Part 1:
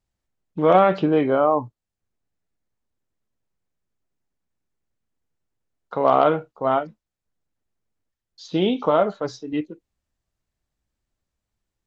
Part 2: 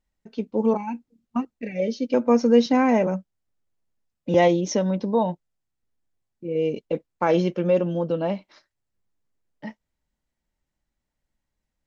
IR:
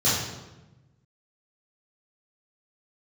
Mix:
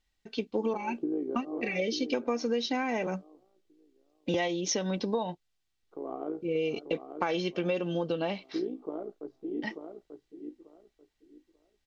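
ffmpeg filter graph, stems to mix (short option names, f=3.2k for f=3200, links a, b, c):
-filter_complex "[0:a]tremolo=f=58:d=0.71,acrusher=bits=7:mix=0:aa=0.5,bandpass=f=330:t=q:w=3.1:csg=0,volume=-6.5dB,asplit=2[a][b];[b]volume=-6.5dB[c];[1:a]equalizer=f=3.6k:t=o:w=2:g=12,volume=-2dB,asplit=2[d][e];[e]apad=whole_len=523343[f];[a][f]sidechaincompress=threshold=-28dB:ratio=8:attack=5.7:release=245[g];[c]aecho=0:1:889|1778|2667:1|0.21|0.0441[h];[g][d][h]amix=inputs=3:normalize=0,aecho=1:1:2.6:0.3,acompressor=threshold=-26dB:ratio=10"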